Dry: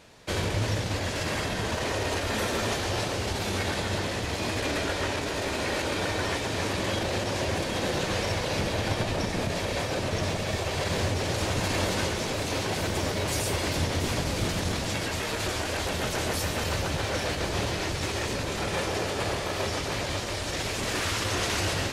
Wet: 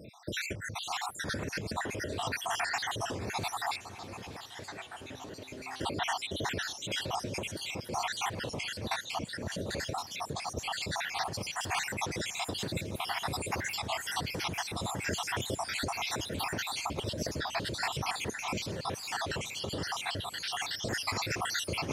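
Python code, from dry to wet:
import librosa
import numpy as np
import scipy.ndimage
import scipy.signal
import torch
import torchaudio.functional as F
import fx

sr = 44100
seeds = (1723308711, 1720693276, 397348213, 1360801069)

y = fx.spec_dropout(x, sr, seeds[0], share_pct=70)
y = scipy.signal.sosfilt(scipy.signal.butter(2, 100.0, 'highpass', fs=sr, output='sos'), y)
y = fx.low_shelf(y, sr, hz=470.0, db=10.5)
y = fx.over_compress(y, sr, threshold_db=-32.0, ratio=-1.0)
y = fx.comb_fb(y, sr, f0_hz=130.0, decay_s=1.5, harmonics='all', damping=0.0, mix_pct=70, at=(3.77, 5.81))
y = fx.echo_heads(y, sr, ms=296, heads='second and third', feedback_pct=52, wet_db=-20.5)
y = fx.record_warp(y, sr, rpm=33.33, depth_cents=100.0)
y = y * librosa.db_to_amplitude(-2.0)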